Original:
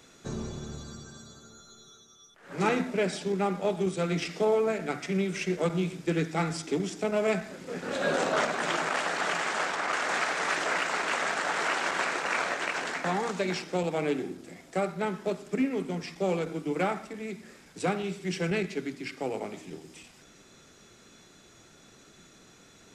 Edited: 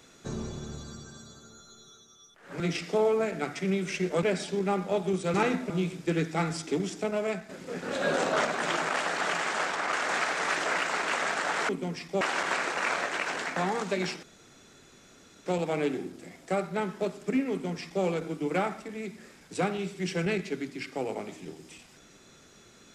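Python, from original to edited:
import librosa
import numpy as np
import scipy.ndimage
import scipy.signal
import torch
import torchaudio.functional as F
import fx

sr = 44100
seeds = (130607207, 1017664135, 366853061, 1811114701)

y = fx.edit(x, sr, fx.swap(start_s=2.6, length_s=0.36, other_s=4.07, other_length_s=1.63),
    fx.fade_out_to(start_s=6.95, length_s=0.54, floor_db=-8.5),
    fx.insert_room_tone(at_s=13.71, length_s=1.23),
    fx.duplicate(start_s=15.76, length_s=0.52, to_s=11.69), tone=tone)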